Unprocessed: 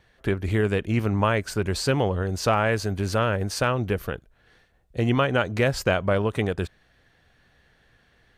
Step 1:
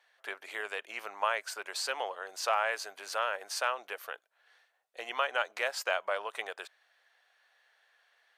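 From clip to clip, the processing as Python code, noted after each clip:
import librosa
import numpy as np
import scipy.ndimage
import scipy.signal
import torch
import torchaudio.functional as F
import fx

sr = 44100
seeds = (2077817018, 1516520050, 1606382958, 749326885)

y = scipy.signal.sosfilt(scipy.signal.butter(4, 650.0, 'highpass', fs=sr, output='sos'), x)
y = F.gain(torch.from_numpy(y), -5.0).numpy()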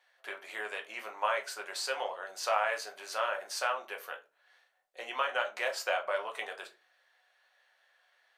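y = fx.room_shoebox(x, sr, seeds[0], volume_m3=120.0, walls='furnished', distance_m=1.0)
y = F.gain(torch.from_numpy(y), -2.5).numpy()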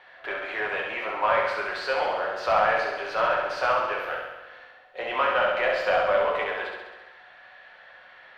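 y = fx.power_curve(x, sr, exponent=0.7)
y = fx.air_absorb(y, sr, metres=360.0)
y = fx.room_flutter(y, sr, wall_m=11.5, rt60_s=1.1)
y = F.gain(torch.from_numpy(y), 5.0).numpy()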